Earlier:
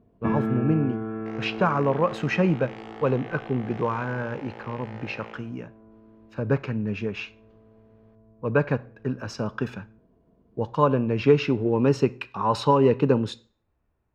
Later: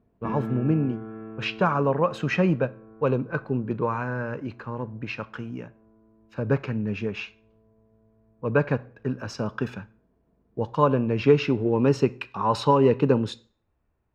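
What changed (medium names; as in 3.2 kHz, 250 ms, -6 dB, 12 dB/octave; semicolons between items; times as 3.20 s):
first sound -6.5 dB; second sound: muted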